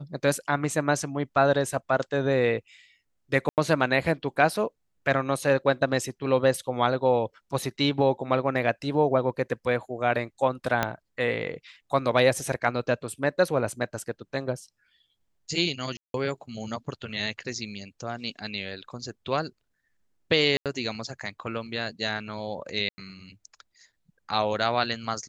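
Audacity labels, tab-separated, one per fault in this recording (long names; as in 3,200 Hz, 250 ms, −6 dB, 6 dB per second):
3.490000	3.580000	drop-out 88 ms
10.830000	10.830000	click −9 dBFS
15.970000	16.140000	drop-out 172 ms
20.570000	20.660000	drop-out 87 ms
22.890000	22.980000	drop-out 90 ms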